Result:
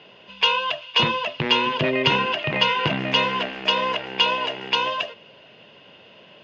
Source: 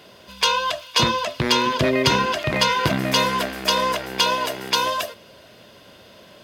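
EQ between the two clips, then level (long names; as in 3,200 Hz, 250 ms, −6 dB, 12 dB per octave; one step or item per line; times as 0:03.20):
high-frequency loss of the air 220 metres
loudspeaker in its box 120–7,300 Hz, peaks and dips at 150 Hz +5 dB, 450 Hz +4 dB, 860 Hz +6 dB, 1,900 Hz +3 dB, 2,800 Hz +9 dB, 6,800 Hz +5 dB
parametric band 2,800 Hz +5 dB 0.64 octaves
−4.0 dB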